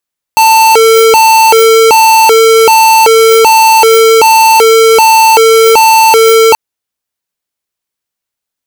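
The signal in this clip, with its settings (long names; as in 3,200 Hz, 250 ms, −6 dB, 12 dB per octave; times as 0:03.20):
siren hi-lo 449–890 Hz 1.3 per second square −4 dBFS 6.18 s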